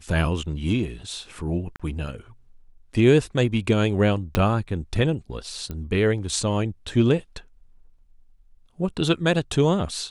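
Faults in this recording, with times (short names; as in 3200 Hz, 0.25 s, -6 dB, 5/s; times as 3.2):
1.76–1.8 gap 36 ms
4.35 pop -7 dBFS
5.71 pop -19 dBFS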